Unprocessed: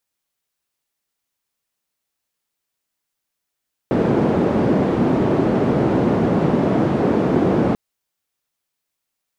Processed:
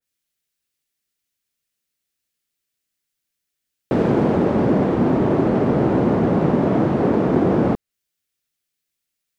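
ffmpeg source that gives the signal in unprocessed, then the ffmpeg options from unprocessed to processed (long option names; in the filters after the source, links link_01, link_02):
-f lavfi -i "anoisesrc=color=white:duration=3.84:sample_rate=44100:seed=1,highpass=frequency=160,lowpass=frequency=330,volume=8.2dB"
-filter_complex "[0:a]acrossover=split=1200[link_01][link_02];[link_01]adynamicsmooth=sensitivity=6.5:basefreq=640[link_03];[link_03][link_02]amix=inputs=2:normalize=0,adynamicequalizer=threshold=0.00794:dfrequency=2300:dqfactor=0.7:tfrequency=2300:tqfactor=0.7:attack=5:release=100:ratio=0.375:range=3:mode=cutabove:tftype=highshelf"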